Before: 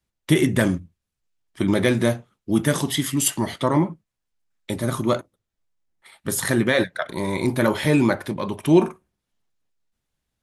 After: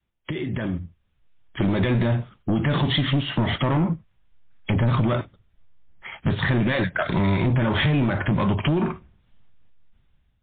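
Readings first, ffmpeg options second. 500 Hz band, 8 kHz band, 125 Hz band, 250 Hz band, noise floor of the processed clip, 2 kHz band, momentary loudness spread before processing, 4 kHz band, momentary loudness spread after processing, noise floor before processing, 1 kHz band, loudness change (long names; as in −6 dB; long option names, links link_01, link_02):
−5.0 dB, below −40 dB, +4.0 dB, −2.5 dB, −67 dBFS, −0.5 dB, 9 LU, +1.0 dB, 13 LU, −82 dBFS, −0.5 dB, −1.5 dB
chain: -af "alimiter=limit=-15dB:level=0:latency=1:release=61,acompressor=threshold=-27dB:ratio=16,asubboost=boost=3:cutoff=180,dynaudnorm=framelen=380:gausssize=5:maxgain=12dB,aresample=16000,asoftclip=type=tanh:threshold=-18dB,aresample=44100,adynamicequalizer=threshold=0.00708:dfrequency=490:dqfactor=3.9:tfrequency=490:tqfactor=3.9:attack=5:release=100:ratio=0.375:range=2:mode=cutabove:tftype=bell,volume=2.5dB" -ar 8000 -c:a libmp3lame -b:a 24k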